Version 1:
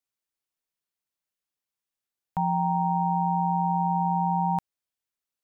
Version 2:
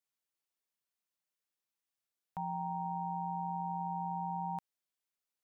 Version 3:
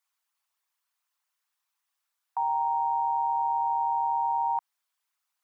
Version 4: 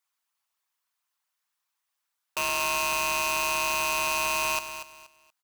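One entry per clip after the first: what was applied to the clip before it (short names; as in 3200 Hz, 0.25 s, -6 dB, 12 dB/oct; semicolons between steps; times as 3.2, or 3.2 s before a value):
low shelf 120 Hz -8 dB; limiter -28 dBFS, peak gain reduction 10 dB; gain -2.5 dB
formant sharpening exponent 1.5; resonant high-pass 1000 Hz, resonance Q 2; gain +7.5 dB
wrapped overs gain 23 dB; on a send: feedback echo 0.238 s, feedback 26%, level -10.5 dB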